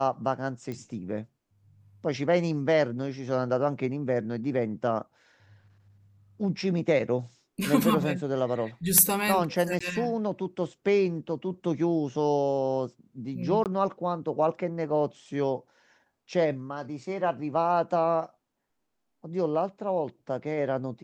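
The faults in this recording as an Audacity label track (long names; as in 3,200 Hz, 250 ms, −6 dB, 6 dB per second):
0.720000	0.720000	click −24 dBFS
9.790000	9.800000	drop-out 15 ms
13.640000	13.660000	drop-out 18 ms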